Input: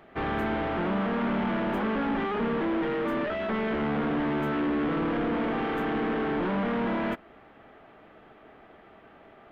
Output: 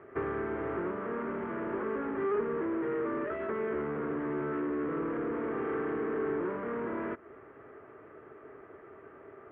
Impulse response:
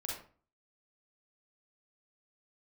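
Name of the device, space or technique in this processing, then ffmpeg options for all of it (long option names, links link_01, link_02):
bass amplifier: -af "acompressor=threshold=-33dB:ratio=6,highpass=76,equalizer=frequency=100:width_type=q:width=4:gain=5,equalizer=frequency=200:width_type=q:width=4:gain=-10,equalizer=frequency=400:width_type=q:width=4:gain=10,equalizer=frequency=760:width_type=q:width=4:gain=-9,equalizer=frequency=1200:width_type=q:width=4:gain=3,lowpass=frequency=2000:width=0.5412,lowpass=frequency=2000:width=1.3066"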